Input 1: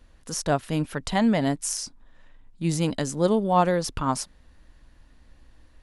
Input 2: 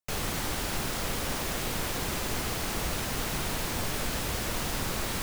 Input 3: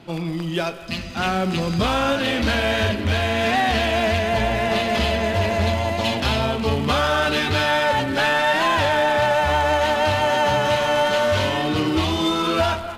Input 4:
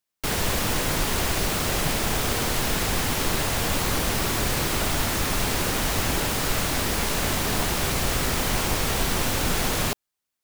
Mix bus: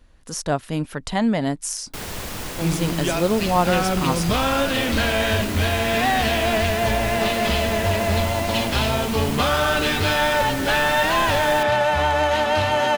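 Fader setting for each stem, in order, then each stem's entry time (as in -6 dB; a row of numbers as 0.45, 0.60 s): +1.0 dB, off, -0.5 dB, -6.5 dB; 0.00 s, off, 2.50 s, 1.70 s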